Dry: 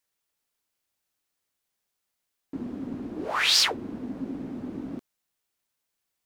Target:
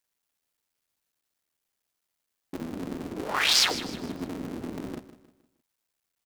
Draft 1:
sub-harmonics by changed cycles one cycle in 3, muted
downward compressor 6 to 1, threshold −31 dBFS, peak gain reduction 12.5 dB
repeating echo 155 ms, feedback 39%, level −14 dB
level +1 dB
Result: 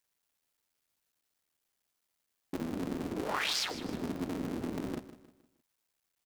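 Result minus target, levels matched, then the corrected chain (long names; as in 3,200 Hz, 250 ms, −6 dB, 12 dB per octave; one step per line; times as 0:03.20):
downward compressor: peak gain reduction +12.5 dB
sub-harmonics by changed cycles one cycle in 3, muted
repeating echo 155 ms, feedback 39%, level −14 dB
level +1 dB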